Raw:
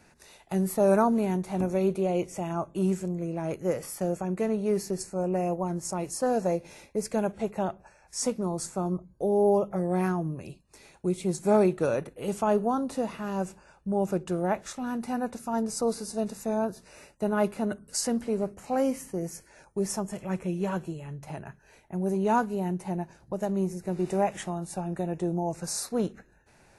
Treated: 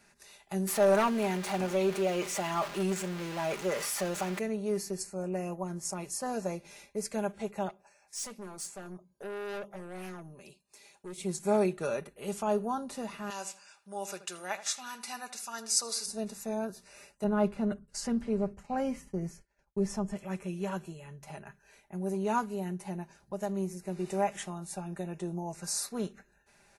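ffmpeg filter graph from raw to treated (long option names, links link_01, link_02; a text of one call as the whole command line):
ffmpeg -i in.wav -filter_complex "[0:a]asettb=1/sr,asplit=3[link_01][link_02][link_03];[link_01]atrim=end=0.674[link_04];[link_02]atrim=start=0.67:end=4.39,asetpts=PTS-STARTPTS,afade=type=in:duration=0.004:curve=qsin,afade=type=out:start_time=3.716:duration=0.004:curve=qsin,aeval=exprs='val(0)+0.5*0.0188*sgn(val(0))':channel_layout=same,asplit=2[link_05][link_06];[link_06]highpass=frequency=720:poles=1,volume=13dB,asoftclip=type=tanh:threshold=-10.5dB[link_07];[link_05][link_07]amix=inputs=2:normalize=0,lowpass=frequency=3800:poles=1,volume=-6dB[link_08];[link_03]atrim=start=4.386[link_09];[link_04][link_08]acrossfade=duration=0.004:curve1=hsin:curve2=qsin[link_10];[link_10][link_09]acrossfade=duration=0.004:curve1=qsin:curve2=hsin,asettb=1/sr,asplit=3[link_11][link_12][link_13];[link_11]atrim=end=7.694[link_14];[link_12]atrim=start=7.69:end=11.18,asetpts=PTS-STARTPTS,afade=type=in:duration=0.004:curve=qsin,afade=type=out:start_time=3.486:duration=0.004:curve=qsin,highpass=frequency=320:poles=1,equalizer=frequency=1400:width=1.6:gain=-5,aeval=exprs='(tanh(39.8*val(0)+0.15)-tanh(0.15))/39.8':channel_layout=same[link_15];[link_13]atrim=start=11.176[link_16];[link_14][link_15]acrossfade=duration=0.004:curve1=hsin:curve2=qsin[link_17];[link_17][link_16]acrossfade=duration=0.004:curve1=qsin:curve2=hsin,asettb=1/sr,asplit=3[link_18][link_19][link_20];[link_18]atrim=end=13.304[link_21];[link_19]atrim=start=13.3:end=16.06,asetpts=PTS-STARTPTS,afade=type=in:duration=0.004:curve=qsin,afade=type=out:start_time=2.756:duration=0.004:curve=qsin,highpass=frequency=1200:poles=1,equalizer=frequency=4900:width_type=o:width=2.8:gain=10.5,asplit=2[link_22][link_23];[link_23]adelay=80,lowpass=frequency=2200:poles=1,volume=-12.5dB,asplit=2[link_24][link_25];[link_25]adelay=80,lowpass=frequency=2200:poles=1,volume=0.32,asplit=2[link_26][link_27];[link_27]adelay=80,lowpass=frequency=2200:poles=1,volume=0.32[link_28];[link_22][link_24][link_26][link_28]amix=inputs=4:normalize=0,atrim=end_sample=121716[link_29];[link_20]atrim=start=16.056[link_30];[link_21][link_29]acrossfade=duration=0.004:curve1=hsin:curve2=qsin[link_31];[link_31][link_30]acrossfade=duration=0.004:curve1=qsin:curve2=hsin,asettb=1/sr,asplit=3[link_32][link_33][link_34];[link_32]atrim=end=17.244[link_35];[link_33]atrim=start=17.24:end=20.17,asetpts=PTS-STARTPTS,afade=type=in:duration=0.004:curve=qsin,afade=type=out:start_time=2.926:duration=0.004:curve=qsin,aemphasis=mode=reproduction:type=bsi,agate=range=-33dB:threshold=-40dB:ratio=3:release=100:detection=peak[link_36];[link_34]atrim=start=20.166[link_37];[link_35][link_36]acrossfade=duration=0.004:curve1=hsin:curve2=qsin[link_38];[link_38][link_37]acrossfade=duration=0.004:curve1=qsin:curve2=hsin,tiltshelf=frequency=930:gain=-4,aecho=1:1:5:0.51,volume=-5.5dB" out.wav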